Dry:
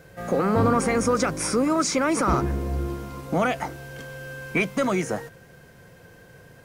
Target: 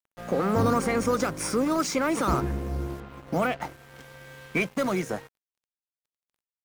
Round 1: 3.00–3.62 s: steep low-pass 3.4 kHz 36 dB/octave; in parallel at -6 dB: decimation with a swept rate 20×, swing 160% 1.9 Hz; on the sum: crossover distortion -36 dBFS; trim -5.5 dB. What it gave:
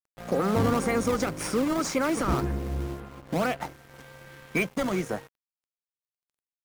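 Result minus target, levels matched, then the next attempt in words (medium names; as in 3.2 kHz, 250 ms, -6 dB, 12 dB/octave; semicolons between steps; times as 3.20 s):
decimation with a swept rate: distortion +11 dB
3.00–3.62 s: steep low-pass 3.4 kHz 36 dB/octave; in parallel at -6 dB: decimation with a swept rate 5×, swing 160% 1.9 Hz; on the sum: crossover distortion -36 dBFS; trim -5.5 dB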